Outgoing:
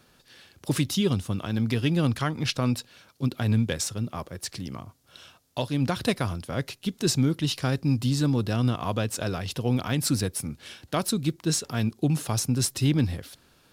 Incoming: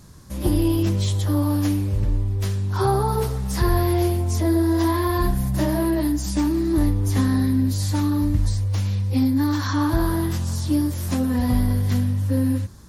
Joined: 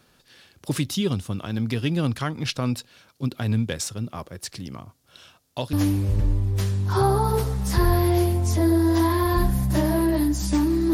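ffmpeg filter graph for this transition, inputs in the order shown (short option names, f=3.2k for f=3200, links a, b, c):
-filter_complex "[0:a]apad=whole_dur=10.93,atrim=end=10.93,atrim=end=5.732[a];[1:a]atrim=start=1.568:end=6.77[b];[a][b]acrossfade=d=0.004:c1=hsin:c2=hsin"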